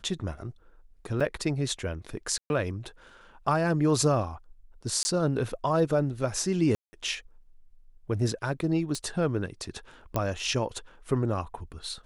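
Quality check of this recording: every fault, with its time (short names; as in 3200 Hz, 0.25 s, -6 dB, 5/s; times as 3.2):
1.2–1.21 gap 5.6 ms
2.38–2.5 gap 0.121 s
5.03–5.05 gap 20 ms
6.75–6.93 gap 0.18 s
8.95 pop -19 dBFS
10.16 pop -13 dBFS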